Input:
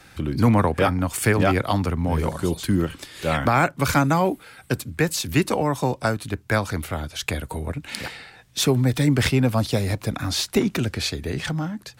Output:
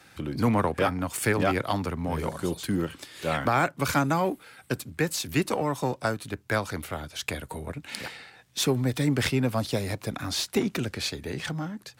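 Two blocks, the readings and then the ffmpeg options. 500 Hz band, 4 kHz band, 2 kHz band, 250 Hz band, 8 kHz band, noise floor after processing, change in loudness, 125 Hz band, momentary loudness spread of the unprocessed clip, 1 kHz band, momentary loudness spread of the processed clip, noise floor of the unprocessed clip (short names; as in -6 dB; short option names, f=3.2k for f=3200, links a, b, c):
-4.5 dB, -4.5 dB, -4.5 dB, -5.5 dB, -4.5 dB, -57 dBFS, -5.5 dB, -7.5 dB, 10 LU, -4.5 dB, 11 LU, -52 dBFS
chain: -af "aeval=exprs='if(lt(val(0),0),0.708*val(0),val(0))':c=same,highpass=f=130:p=1,volume=-3dB"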